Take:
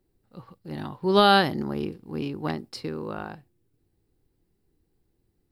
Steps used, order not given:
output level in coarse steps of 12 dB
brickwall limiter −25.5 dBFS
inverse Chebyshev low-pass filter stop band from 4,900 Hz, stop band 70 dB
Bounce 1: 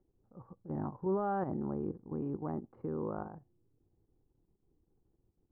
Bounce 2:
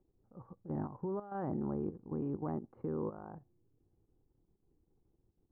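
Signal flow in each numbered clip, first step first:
output level in coarse steps, then inverse Chebyshev low-pass filter, then brickwall limiter
brickwall limiter, then output level in coarse steps, then inverse Chebyshev low-pass filter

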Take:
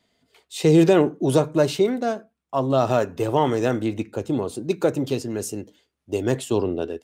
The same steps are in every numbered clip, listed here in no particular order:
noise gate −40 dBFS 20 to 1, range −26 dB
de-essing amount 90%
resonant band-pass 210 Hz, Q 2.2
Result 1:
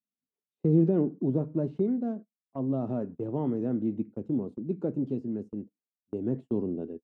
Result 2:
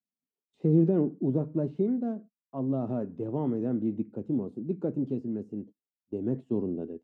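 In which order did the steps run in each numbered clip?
de-essing, then resonant band-pass, then noise gate
noise gate, then de-essing, then resonant band-pass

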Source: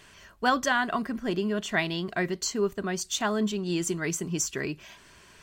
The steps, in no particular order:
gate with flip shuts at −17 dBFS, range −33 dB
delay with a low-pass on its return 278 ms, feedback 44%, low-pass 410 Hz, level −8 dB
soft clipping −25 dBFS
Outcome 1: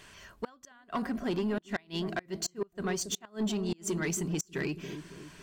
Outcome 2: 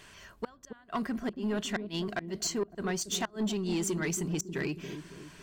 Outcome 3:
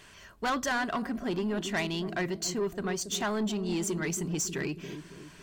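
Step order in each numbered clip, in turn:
delay with a low-pass on its return, then gate with flip, then soft clipping
gate with flip, then delay with a low-pass on its return, then soft clipping
delay with a low-pass on its return, then soft clipping, then gate with flip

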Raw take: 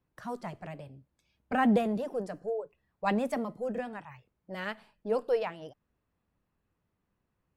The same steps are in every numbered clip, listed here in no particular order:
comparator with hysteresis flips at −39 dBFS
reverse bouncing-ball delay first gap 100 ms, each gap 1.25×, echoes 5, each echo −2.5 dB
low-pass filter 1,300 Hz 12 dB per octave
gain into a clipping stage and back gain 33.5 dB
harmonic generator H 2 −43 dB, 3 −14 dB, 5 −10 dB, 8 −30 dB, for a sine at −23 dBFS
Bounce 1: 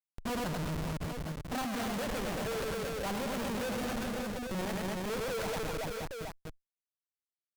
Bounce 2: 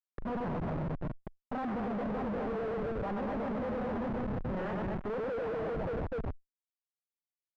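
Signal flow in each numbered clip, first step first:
low-pass filter, then comparator with hysteresis, then reverse bouncing-ball delay, then harmonic generator, then gain into a clipping stage and back
reverse bouncing-ball delay, then comparator with hysteresis, then harmonic generator, then gain into a clipping stage and back, then low-pass filter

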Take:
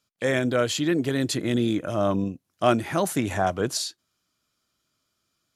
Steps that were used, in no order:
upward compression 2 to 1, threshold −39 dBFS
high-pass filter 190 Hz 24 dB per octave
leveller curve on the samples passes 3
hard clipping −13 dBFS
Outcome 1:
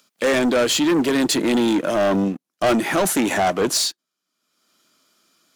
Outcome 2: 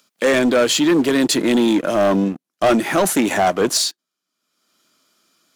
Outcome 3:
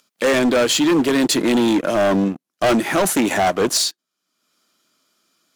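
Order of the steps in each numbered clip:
high-pass filter, then hard clipping, then leveller curve on the samples, then upward compression
hard clipping, then high-pass filter, then leveller curve on the samples, then upward compression
upward compression, then high-pass filter, then leveller curve on the samples, then hard clipping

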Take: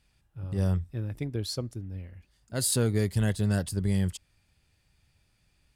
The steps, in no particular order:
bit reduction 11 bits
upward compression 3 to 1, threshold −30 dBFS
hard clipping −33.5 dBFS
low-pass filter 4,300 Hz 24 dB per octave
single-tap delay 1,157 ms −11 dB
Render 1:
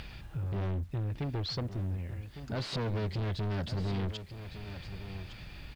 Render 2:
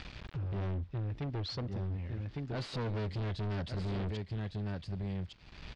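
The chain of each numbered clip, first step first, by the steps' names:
hard clipping, then low-pass filter, then upward compression, then bit reduction, then single-tap delay
bit reduction, then single-tap delay, then upward compression, then hard clipping, then low-pass filter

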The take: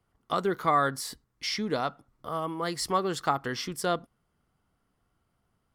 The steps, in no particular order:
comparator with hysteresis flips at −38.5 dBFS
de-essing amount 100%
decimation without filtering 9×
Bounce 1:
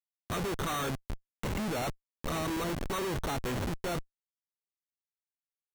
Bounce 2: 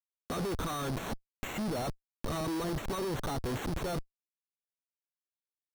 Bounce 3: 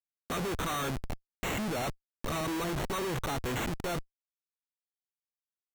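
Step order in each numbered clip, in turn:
de-essing, then decimation without filtering, then comparator with hysteresis
comparator with hysteresis, then de-essing, then decimation without filtering
de-essing, then comparator with hysteresis, then decimation without filtering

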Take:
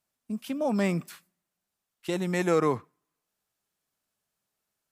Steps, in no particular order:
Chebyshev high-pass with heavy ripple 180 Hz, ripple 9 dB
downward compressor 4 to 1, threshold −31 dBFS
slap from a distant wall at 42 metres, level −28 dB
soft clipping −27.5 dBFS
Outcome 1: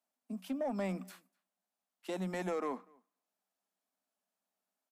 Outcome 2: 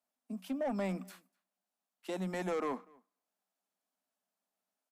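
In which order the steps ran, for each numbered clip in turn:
Chebyshev high-pass with heavy ripple, then downward compressor, then soft clipping, then slap from a distant wall
Chebyshev high-pass with heavy ripple, then soft clipping, then slap from a distant wall, then downward compressor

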